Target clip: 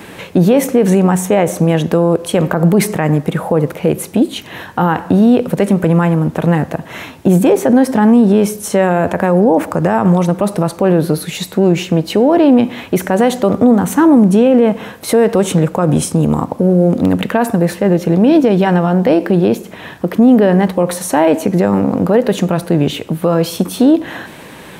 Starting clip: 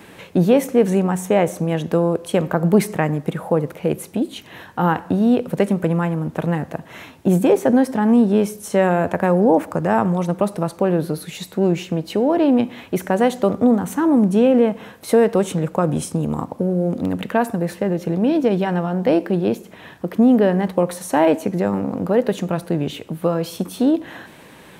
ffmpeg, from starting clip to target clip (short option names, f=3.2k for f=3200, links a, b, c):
-af "alimiter=level_in=10.5dB:limit=-1dB:release=50:level=0:latency=1,volume=-1dB"